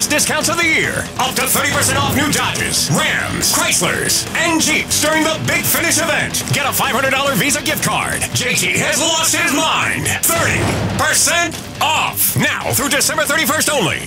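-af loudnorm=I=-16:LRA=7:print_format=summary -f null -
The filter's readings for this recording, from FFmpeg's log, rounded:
Input Integrated:    -14.1 LUFS
Input True Peak:      -1.6 dBTP
Input LRA:             0.4 LU
Input Threshold:     -24.1 LUFS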